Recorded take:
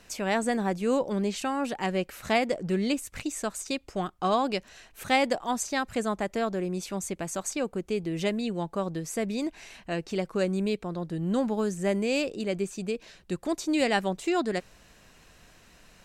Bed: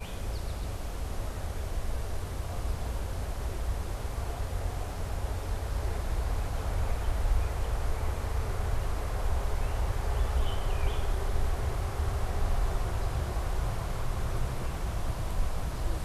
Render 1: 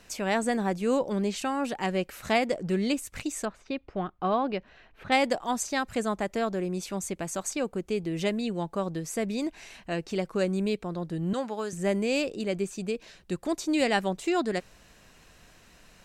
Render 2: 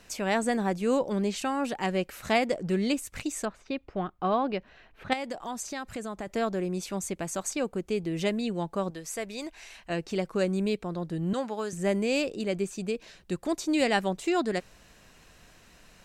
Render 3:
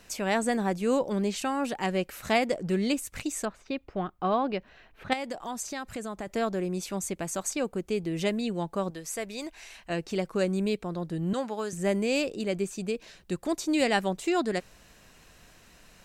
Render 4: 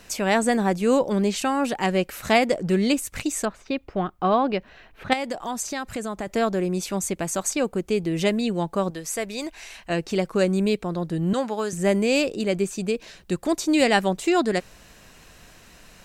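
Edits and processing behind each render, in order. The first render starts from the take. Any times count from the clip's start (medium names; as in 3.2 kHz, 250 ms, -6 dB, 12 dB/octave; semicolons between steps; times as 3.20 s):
3.45–5.12 s: distance through air 340 m; 11.33–11.73 s: frequency weighting A
5.13–6.27 s: compression 3:1, threshold -33 dBFS; 8.90–9.90 s: peaking EQ 190 Hz -11.5 dB 2.2 oct
treble shelf 11 kHz +5 dB
trim +6 dB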